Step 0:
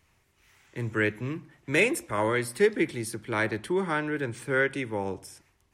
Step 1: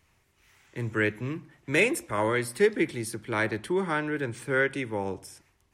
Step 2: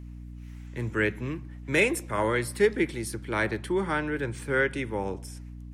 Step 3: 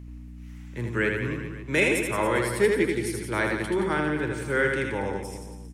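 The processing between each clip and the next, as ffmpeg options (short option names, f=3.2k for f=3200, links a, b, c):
-af anull
-af "aeval=exprs='val(0)+0.01*(sin(2*PI*60*n/s)+sin(2*PI*2*60*n/s)/2+sin(2*PI*3*60*n/s)/3+sin(2*PI*4*60*n/s)/4+sin(2*PI*5*60*n/s)/5)':c=same"
-af "aecho=1:1:80|172|277.8|399.5|539.4:0.631|0.398|0.251|0.158|0.1"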